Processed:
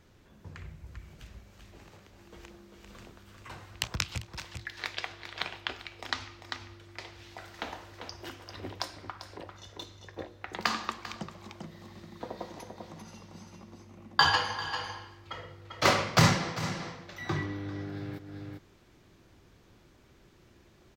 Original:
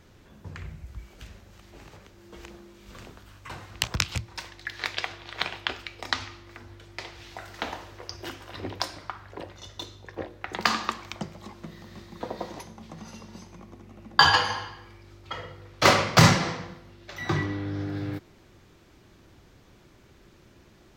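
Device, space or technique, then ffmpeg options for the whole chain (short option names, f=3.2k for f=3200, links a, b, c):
ducked delay: -filter_complex "[0:a]asplit=3[a][b][c];[b]adelay=395,volume=-5dB[d];[c]apad=whole_len=941799[e];[d][e]sidechaincompress=threshold=-38dB:ratio=10:attack=6.5:release=244[f];[a][f]amix=inputs=2:normalize=0,volume=-5.5dB"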